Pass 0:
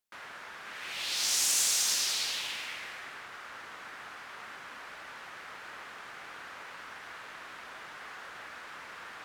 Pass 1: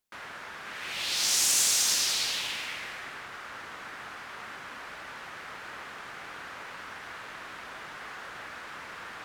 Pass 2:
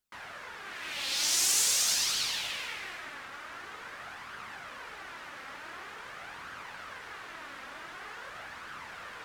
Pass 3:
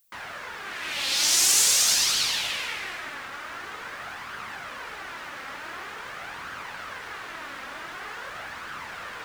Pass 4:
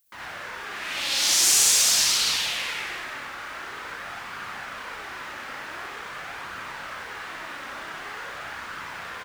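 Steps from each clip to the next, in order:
low shelf 290 Hz +5.5 dB; gain +3 dB
flange 0.46 Hz, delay 0.6 ms, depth 3.2 ms, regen +48%; gain +2 dB
added noise violet -72 dBFS; gain +6.5 dB
loudspeakers at several distances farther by 21 m 0 dB, 32 m -2 dB; gain -3 dB

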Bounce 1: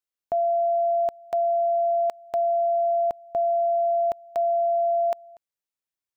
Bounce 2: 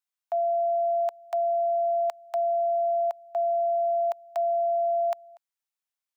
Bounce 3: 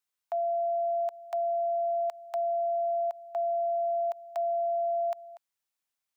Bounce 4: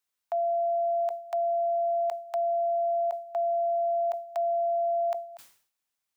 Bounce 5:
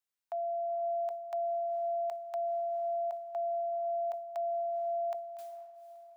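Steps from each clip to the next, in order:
steep high-pass 670 Hz 36 dB/oct
limiter -28.5 dBFS, peak gain reduction 9.5 dB; gain +3 dB
sustainer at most 110 dB/s; gain +2 dB
diffused feedback echo 0.477 s, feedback 47%, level -13 dB; gain -7.5 dB

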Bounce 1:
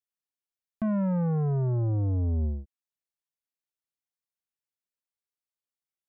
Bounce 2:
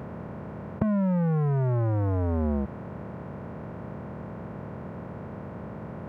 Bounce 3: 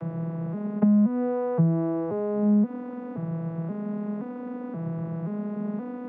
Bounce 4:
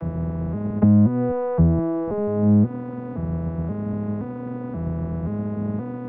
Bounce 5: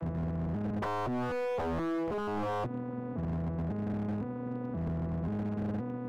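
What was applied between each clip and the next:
per-bin compression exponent 0.2; HPF 83 Hz
arpeggiated vocoder major triad, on E3, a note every 0.526 s; compressor 6:1, threshold -26 dBFS, peak gain reduction 8 dB; gain +8.5 dB
octaver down 1 oct, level -4 dB; air absorption 51 m; gain +3.5 dB
wavefolder -21.5 dBFS; gain -6.5 dB

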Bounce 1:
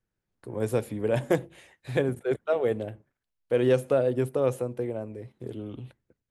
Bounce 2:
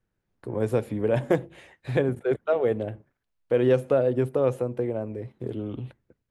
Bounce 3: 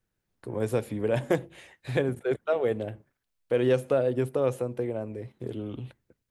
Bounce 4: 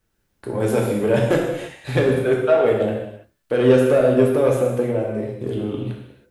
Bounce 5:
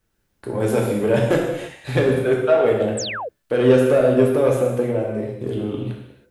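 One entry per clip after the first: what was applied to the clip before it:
high shelf 4400 Hz -11 dB; in parallel at -1 dB: compressor, threshold -32 dBFS, peak gain reduction 14 dB
high shelf 2600 Hz +8 dB; gain -3 dB
soft clip -16.5 dBFS, distortion -19 dB; non-linear reverb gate 0.36 s falling, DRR -1.5 dB; gain +7.5 dB
painted sound fall, 2.97–3.29, 430–9000 Hz -28 dBFS

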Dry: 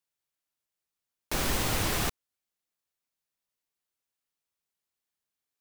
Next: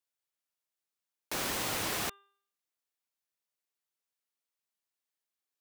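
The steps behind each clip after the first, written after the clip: HPF 300 Hz 6 dB/oct; de-hum 398.1 Hz, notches 9; gain -3 dB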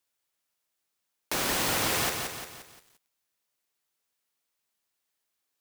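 in parallel at -2 dB: compressor 8:1, threshold -43 dBFS, peak gain reduction 12.5 dB; on the sum: lo-fi delay 0.175 s, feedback 55%, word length 9-bit, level -5 dB; gain +3.5 dB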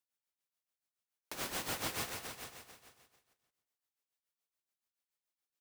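tremolo 7 Hz, depth 75%; on a send: feedback echo 0.444 s, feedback 16%, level -11.5 dB; on the sum: gain -8.5 dB

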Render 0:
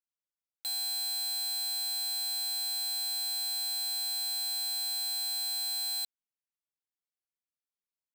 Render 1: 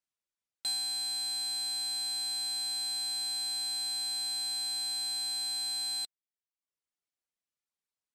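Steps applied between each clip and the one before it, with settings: LPF 10000 Hz 24 dB/oct; reverb removal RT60 0.78 s; gain +3 dB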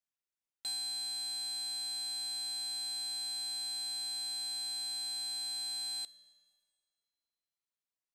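Schroeder reverb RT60 1.9 s, combs from 30 ms, DRR 18.5 dB; gain -5 dB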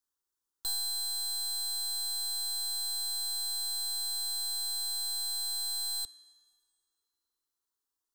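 tracing distortion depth 0.021 ms; fixed phaser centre 630 Hz, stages 6; gain +7.5 dB

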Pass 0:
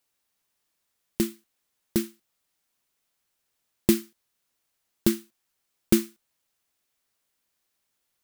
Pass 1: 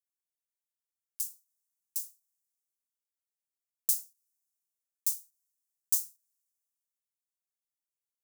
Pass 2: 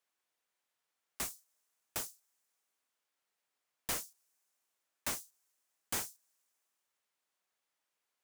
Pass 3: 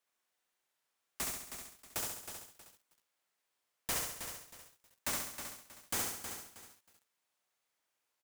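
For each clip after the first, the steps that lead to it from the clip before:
inverse Chebyshev high-pass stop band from 1100 Hz, stop band 80 dB; three-band expander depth 40%
overdrive pedal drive 28 dB, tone 1800 Hz, clips at -10.5 dBFS; gain -4.5 dB
on a send: feedback echo 68 ms, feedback 52%, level -3 dB; on the sum: lo-fi delay 0.317 s, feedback 35%, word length 9-bit, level -8 dB

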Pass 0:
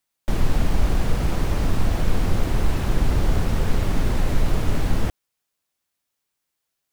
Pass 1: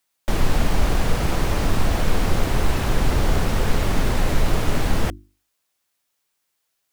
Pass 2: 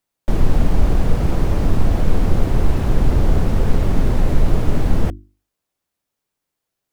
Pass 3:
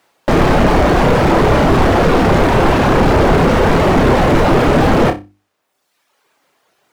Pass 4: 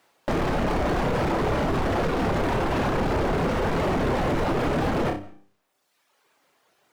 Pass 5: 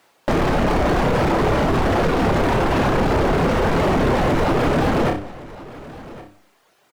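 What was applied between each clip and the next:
low shelf 330 Hz -5 dB; notches 50/100/150/200/250/300/350 Hz; gain +5.5 dB
tilt shelf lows +6.5 dB, about 760 Hz; gain -1.5 dB
reverb removal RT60 0.98 s; overdrive pedal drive 39 dB, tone 1300 Hz, clips at -2 dBFS; flutter echo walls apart 5.2 m, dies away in 0.23 s; gain -1 dB
limiter -13 dBFS, peak gain reduction 11.5 dB; on a send at -21.5 dB: reverb RT60 0.45 s, pre-delay 0.12 s; on the sum: gain -5 dB
echo 1.112 s -18.5 dB; gain +6 dB

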